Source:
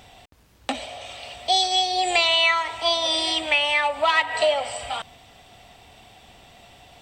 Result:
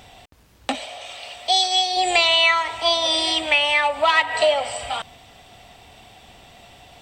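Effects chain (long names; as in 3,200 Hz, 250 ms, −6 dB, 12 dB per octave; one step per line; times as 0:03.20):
0:00.75–0:01.97: low-shelf EQ 320 Hz −11.5 dB
level +2.5 dB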